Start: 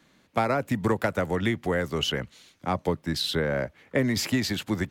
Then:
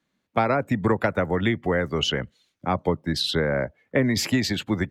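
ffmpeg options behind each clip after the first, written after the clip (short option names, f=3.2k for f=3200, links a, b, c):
-af "afftdn=nr=18:nf=-44,volume=3dB"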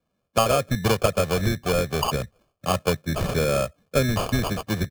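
-af "acrusher=samples=23:mix=1:aa=0.000001,aecho=1:1:1.7:0.51"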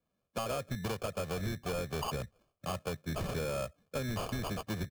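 -af "acompressor=threshold=-22dB:ratio=6,asoftclip=type=tanh:threshold=-21.5dB,volume=-7dB"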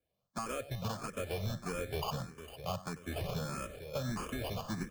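-filter_complex "[0:a]aecho=1:1:95|358|454:0.15|0.106|0.282,asplit=2[a][b];[b]afreqshift=1.6[c];[a][c]amix=inputs=2:normalize=1,volume=1dB"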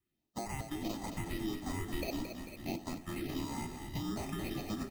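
-filter_complex "[0:a]afreqshift=-430,asplit=2[a][b];[b]asplit=5[c][d][e][f][g];[c]adelay=221,afreqshift=-33,volume=-7.5dB[h];[d]adelay=442,afreqshift=-66,volume=-14.2dB[i];[e]adelay=663,afreqshift=-99,volume=-21dB[j];[f]adelay=884,afreqshift=-132,volume=-27.7dB[k];[g]adelay=1105,afreqshift=-165,volume=-34.5dB[l];[h][i][j][k][l]amix=inputs=5:normalize=0[m];[a][m]amix=inputs=2:normalize=0,volume=-1dB"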